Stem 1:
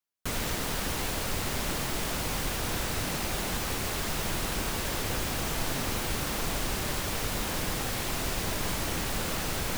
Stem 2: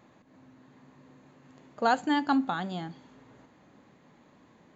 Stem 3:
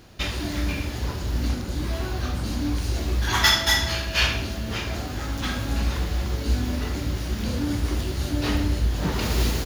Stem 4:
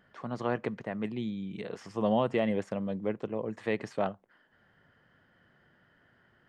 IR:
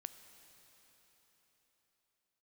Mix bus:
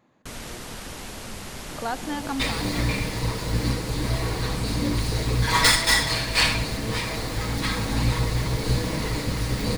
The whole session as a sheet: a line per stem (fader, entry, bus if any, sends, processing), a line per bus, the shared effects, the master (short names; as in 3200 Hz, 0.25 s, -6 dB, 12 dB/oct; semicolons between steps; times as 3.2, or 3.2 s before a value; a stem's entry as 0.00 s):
-4.5 dB, 0.00 s, no send, elliptic low-pass 12000 Hz, stop band 40 dB
-5.0 dB, 0.00 s, no send, backwards sustainer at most 140 dB/s
+2.5 dB, 2.20 s, no send, minimum comb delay 6.3 ms; ripple EQ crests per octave 0.95, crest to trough 8 dB
-12.0 dB, 0.05 s, no send, running mean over 38 samples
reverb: off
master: dry